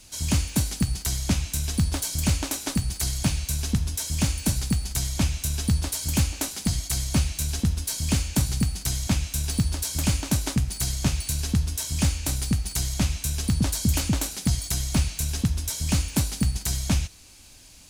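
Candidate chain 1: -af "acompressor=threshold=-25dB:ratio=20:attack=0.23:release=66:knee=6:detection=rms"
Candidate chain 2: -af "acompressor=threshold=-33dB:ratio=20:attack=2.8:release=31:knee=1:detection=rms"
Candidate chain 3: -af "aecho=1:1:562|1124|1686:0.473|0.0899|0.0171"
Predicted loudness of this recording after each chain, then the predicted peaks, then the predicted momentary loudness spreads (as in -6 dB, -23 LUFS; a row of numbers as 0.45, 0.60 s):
-32.5, -36.5, -25.0 LUFS; -21.5, -20.0, -9.5 dBFS; 1, 2, 2 LU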